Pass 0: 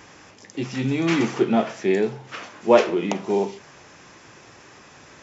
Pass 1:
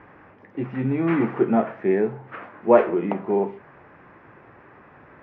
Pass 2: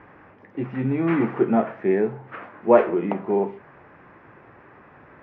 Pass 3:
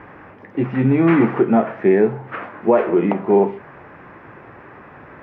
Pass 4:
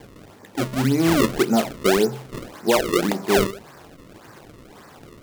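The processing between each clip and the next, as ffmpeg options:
ffmpeg -i in.wav -af "lowpass=frequency=1900:width=0.5412,lowpass=frequency=1900:width=1.3066" out.wav
ffmpeg -i in.wav -af anull out.wav
ffmpeg -i in.wav -af "alimiter=limit=-13dB:level=0:latency=1:release=228,volume=8dB" out.wav
ffmpeg -i in.wav -af "acrusher=samples=32:mix=1:aa=0.000001:lfo=1:lforange=51.2:lforate=1.8,volume=-4dB" out.wav

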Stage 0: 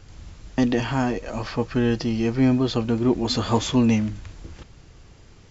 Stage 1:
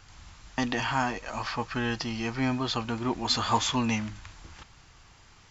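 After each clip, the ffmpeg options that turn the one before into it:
ffmpeg -i in.wav -af "lowshelf=frequency=670:width_type=q:width=1.5:gain=-9" out.wav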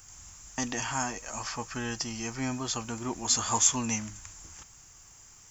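ffmpeg -i in.wav -af "aexciter=amount=11.7:drive=5.8:freq=6100,volume=-5dB" out.wav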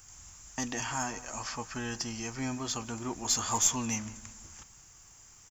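ffmpeg -i in.wav -filter_complex "[0:a]asplit=2[link_01][link_02];[link_02]adelay=175,lowpass=frequency=2000:poles=1,volume=-16.5dB,asplit=2[link_03][link_04];[link_04]adelay=175,lowpass=frequency=2000:poles=1,volume=0.45,asplit=2[link_05][link_06];[link_06]adelay=175,lowpass=frequency=2000:poles=1,volume=0.45,asplit=2[link_07][link_08];[link_08]adelay=175,lowpass=frequency=2000:poles=1,volume=0.45[link_09];[link_01][link_03][link_05][link_07][link_09]amix=inputs=5:normalize=0,asplit=2[link_10][link_11];[link_11]aeval=exprs='clip(val(0),-1,0.0447)':channel_layout=same,volume=-6dB[link_12];[link_10][link_12]amix=inputs=2:normalize=0,volume=-5.5dB" out.wav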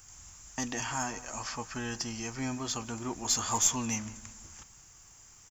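ffmpeg -i in.wav -af anull out.wav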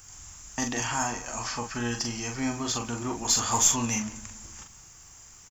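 ffmpeg -i in.wav -filter_complex "[0:a]asplit=2[link_01][link_02];[link_02]adelay=42,volume=-5.5dB[link_03];[link_01][link_03]amix=inputs=2:normalize=0,volume=4dB" out.wav

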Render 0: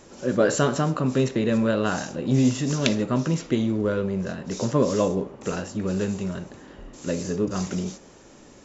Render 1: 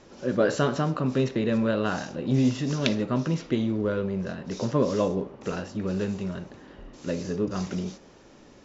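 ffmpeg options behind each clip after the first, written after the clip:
ffmpeg -i in.wav -af "lowpass=frequency=5700:width=0.5412,lowpass=frequency=5700:width=1.3066,volume=-2.5dB" out.wav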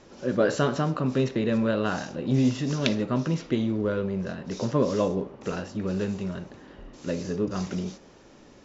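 ffmpeg -i in.wav -af anull out.wav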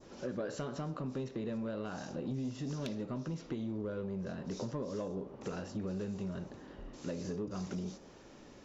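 ffmpeg -i in.wav -af "acompressor=threshold=-31dB:ratio=6,adynamicequalizer=threshold=0.00141:dfrequency=2300:dqfactor=0.79:tfrequency=2300:tqfactor=0.79:attack=5:release=100:ratio=0.375:range=2.5:mode=cutabove:tftype=bell,asoftclip=type=tanh:threshold=-25dB,volume=-3dB" out.wav

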